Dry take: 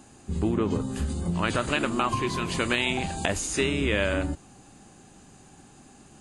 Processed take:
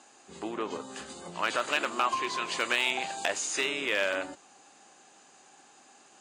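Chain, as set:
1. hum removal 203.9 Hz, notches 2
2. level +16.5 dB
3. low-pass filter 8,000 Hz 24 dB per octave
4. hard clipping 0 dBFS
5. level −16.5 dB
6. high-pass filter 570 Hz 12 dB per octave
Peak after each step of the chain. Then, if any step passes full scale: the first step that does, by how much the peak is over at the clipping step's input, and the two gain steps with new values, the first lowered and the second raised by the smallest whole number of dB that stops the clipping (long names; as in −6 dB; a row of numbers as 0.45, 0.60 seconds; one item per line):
−9.0, +7.5, +7.0, 0.0, −16.5, −12.0 dBFS
step 2, 7.0 dB
step 2 +9.5 dB, step 5 −9.5 dB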